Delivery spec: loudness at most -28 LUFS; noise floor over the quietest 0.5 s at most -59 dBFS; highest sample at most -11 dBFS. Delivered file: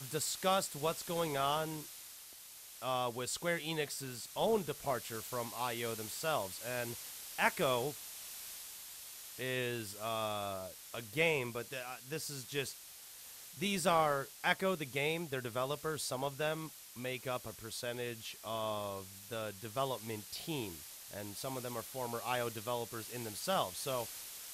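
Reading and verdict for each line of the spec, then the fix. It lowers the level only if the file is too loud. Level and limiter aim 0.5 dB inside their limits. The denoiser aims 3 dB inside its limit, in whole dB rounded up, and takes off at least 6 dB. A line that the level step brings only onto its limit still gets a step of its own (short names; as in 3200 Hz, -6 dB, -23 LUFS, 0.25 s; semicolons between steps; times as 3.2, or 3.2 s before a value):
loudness -38.0 LUFS: OK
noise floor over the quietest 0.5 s -53 dBFS: fail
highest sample -15.0 dBFS: OK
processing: denoiser 9 dB, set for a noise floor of -53 dBFS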